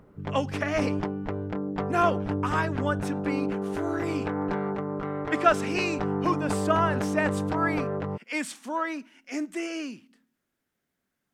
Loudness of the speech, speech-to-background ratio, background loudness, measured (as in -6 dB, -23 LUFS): -30.0 LUFS, 0.5 dB, -30.5 LUFS